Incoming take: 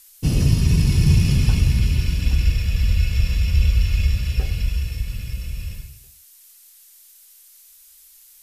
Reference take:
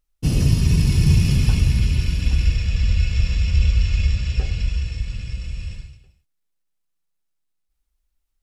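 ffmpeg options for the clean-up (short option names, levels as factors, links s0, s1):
-af "afftdn=nr=23:nf=-49"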